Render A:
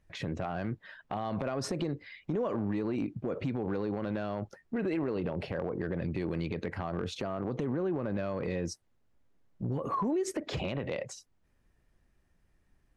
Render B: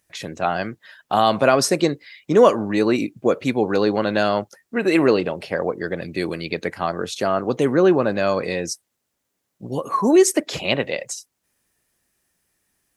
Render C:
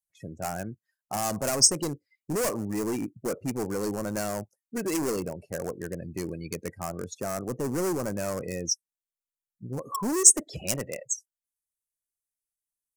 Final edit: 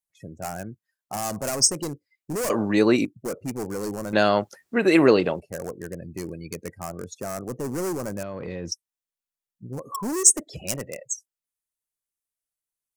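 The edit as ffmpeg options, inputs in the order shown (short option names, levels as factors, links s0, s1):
-filter_complex "[1:a]asplit=2[s0][s1];[2:a]asplit=4[s2][s3][s4][s5];[s2]atrim=end=2.502[s6];[s0]atrim=start=2.498:end=3.052[s7];[s3]atrim=start=3.048:end=4.132[s8];[s1]atrim=start=4.128:end=5.402[s9];[s4]atrim=start=5.398:end=8.232[s10];[0:a]atrim=start=8.228:end=8.722[s11];[s5]atrim=start=8.718[s12];[s6][s7]acrossfade=d=0.004:c1=hsin:c2=hsin[s13];[s13][s8]acrossfade=d=0.004:c1=hsin:c2=hsin[s14];[s14][s9]acrossfade=d=0.004:c1=hsin:c2=hsin[s15];[s15][s10]acrossfade=d=0.004:c1=hsin:c2=hsin[s16];[s16][s11]acrossfade=d=0.004:c1=hsin:c2=hsin[s17];[s17][s12]acrossfade=d=0.004:c1=hsin:c2=hsin"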